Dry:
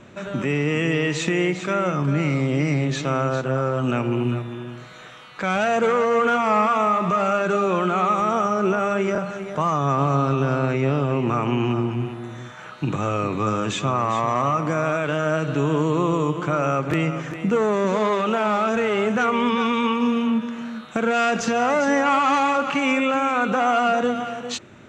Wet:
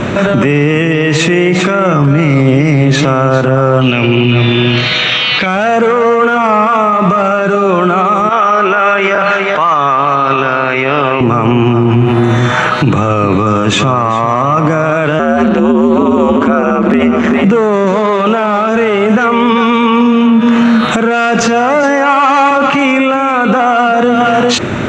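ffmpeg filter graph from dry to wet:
ffmpeg -i in.wav -filter_complex "[0:a]asettb=1/sr,asplit=3[link_01][link_02][link_03];[link_01]atrim=end=3.814[link_04];[link_02]atrim=start=3.81:end=5.46,asetpts=PTS-STARTPTS,afade=type=in:duration=0.004:curve=qsin,afade=type=out:start_time=1.646:duration=0.004:curve=qsin,lowpass=frequency=4900:width=0.5412,lowpass=frequency=4900:width=1.3066,highshelf=frequency=1900:width_type=q:width=1.5:gain=11[link_05];[link_03]atrim=start=5.456[link_06];[link_04][link_05]acrossfade=duration=0.004:curve1=hsin:curve2=qsin[link_07];[link_07][link_06]acrossfade=duration=0.004:curve1=qsin:curve2=hsin,asettb=1/sr,asplit=3[link_08][link_09][link_10];[link_08]atrim=end=8.294[link_11];[link_09]atrim=start=8.29:end=11.21,asetpts=PTS-STARTPTS,afade=type=in:duration=0.004:curve=qsin,afade=type=out:start_time=2.916:duration=0.004:curve=qsin,bandpass=frequency=2800:width_type=q:width=0.73,aemphasis=mode=reproduction:type=50fm[link_12];[link_10]atrim=start=11.206[link_13];[link_11][link_12]acrossfade=duration=0.004:curve1=hsin:curve2=qsin[link_14];[link_14][link_13]acrossfade=duration=0.004:curve1=qsin:curve2=hsin,asettb=1/sr,asplit=3[link_15][link_16][link_17];[link_15]atrim=end=15.194[link_18];[link_16]atrim=start=15.19:end=17.44,asetpts=PTS-STARTPTS,afade=type=in:duration=0.004:curve=qsin,afade=type=out:start_time=2.246:duration=0.004:curve=qsin,highshelf=frequency=4600:gain=-5.5,aeval=exprs='val(0)*sin(2*PI*76*n/s)':channel_layout=same,highpass=frequency=200:width_type=q:width=1.9[link_19];[link_17]atrim=start=17.436[link_20];[link_18][link_19]acrossfade=duration=0.004:curve1=hsin:curve2=qsin[link_21];[link_21][link_20]acrossfade=duration=0.004:curve1=qsin:curve2=hsin,asettb=1/sr,asplit=3[link_22][link_23][link_24];[link_22]atrim=end=21.834[link_25];[link_23]atrim=start=21.83:end=22.51,asetpts=PTS-STARTPTS,afade=type=in:duration=0.004:curve=qsin,afade=type=out:start_time=0.676:duration=0.004:curve=qsin,highpass=290,bandreject=frequency=3500:width=19[link_26];[link_24]atrim=start=22.506[link_27];[link_25][link_26]acrossfade=duration=0.004:curve1=hsin:curve2=qsin[link_28];[link_28][link_27]acrossfade=duration=0.004:curve1=qsin:curve2=hsin,lowpass=frequency=3800:poles=1,acompressor=threshold=-29dB:ratio=6,alimiter=level_in=31.5dB:limit=-1dB:release=50:level=0:latency=1,volume=-1dB" out.wav

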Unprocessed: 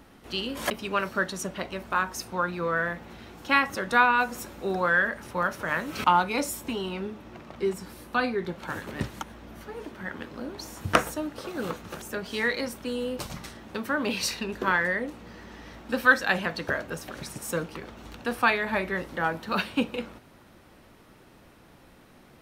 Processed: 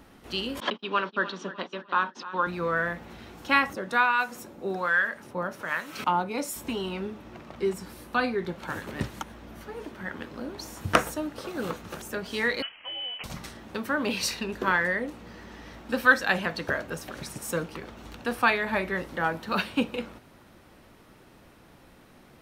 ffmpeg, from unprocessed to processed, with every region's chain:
ffmpeg -i in.wav -filter_complex "[0:a]asettb=1/sr,asplit=3[link_01][link_02][link_03];[link_01]atrim=end=0.604[link_04];[link_02]atrim=start=0.6:end=2.47,asetpts=PTS-STARTPTS,afade=type=in:duration=0.004:curve=qsin,afade=type=out:start_time=1.866:duration=0.004:curve=qsin,agate=range=-30dB:threshold=-38dB:ratio=16:release=100:detection=peak,highpass=frequency=200:width=0.5412,highpass=frequency=200:width=1.3066,equalizer=frequency=660:width_type=q:width=4:gain=-6,equalizer=frequency=1000:width_type=q:width=4:gain=4,equalizer=frequency=2200:width_type=q:width=4:gain=-6,equalizer=frequency=3300:width_type=q:width=4:gain=7,lowpass=frequency=4300:width=0.5412,lowpass=frequency=4300:width=1.3066,aecho=1:1:301|602|903:0.178|0.064|0.023,atrim=end_sample=82467[link_05];[link_03]atrim=start=2.466[link_06];[link_04][link_05]acrossfade=duration=0.004:curve1=hsin:curve2=qsin[link_07];[link_07][link_06]acrossfade=duration=0.004:curve1=qsin:curve2=hsin,asettb=1/sr,asplit=3[link_08][link_09][link_10];[link_08]atrim=end=3.734[link_11];[link_09]atrim=start=3.73:end=6.56,asetpts=PTS-STARTPTS,afade=type=in:duration=0.004:curve=qsin,afade=type=out:start_time=2.826:duration=0.004:curve=qsin,highpass=130,acrossover=split=830[link_12][link_13];[link_12]aeval=exprs='val(0)*(1-0.7/2+0.7/2*cos(2*PI*1.2*n/s))':channel_layout=same[link_14];[link_13]aeval=exprs='val(0)*(1-0.7/2-0.7/2*cos(2*PI*1.2*n/s))':channel_layout=same[link_15];[link_14][link_15]amix=inputs=2:normalize=0[link_16];[link_10]atrim=start=6.556[link_17];[link_11][link_16]acrossfade=duration=0.004:curve1=hsin:curve2=qsin[link_18];[link_18][link_17]acrossfade=duration=0.004:curve1=qsin:curve2=hsin,asettb=1/sr,asplit=3[link_19][link_20][link_21];[link_19]atrim=end=12.624[link_22];[link_20]atrim=start=12.62:end=13.24,asetpts=PTS-STARTPTS,afade=type=in:duration=0.004:curve=qsin,afade=type=out:start_time=0.616:duration=0.004:curve=qsin,highpass=frequency=480:width=0.5412,highpass=frequency=480:width=1.3066,lowpass=frequency=3000:width_type=q:width=0.5098,lowpass=frequency=3000:width_type=q:width=0.6013,lowpass=frequency=3000:width_type=q:width=0.9,lowpass=frequency=3000:width_type=q:width=2.563,afreqshift=-3500[link_23];[link_21]atrim=start=13.236[link_24];[link_22][link_23]acrossfade=duration=0.004:curve1=hsin:curve2=qsin[link_25];[link_25][link_24]acrossfade=duration=0.004:curve1=qsin:curve2=hsin" out.wav

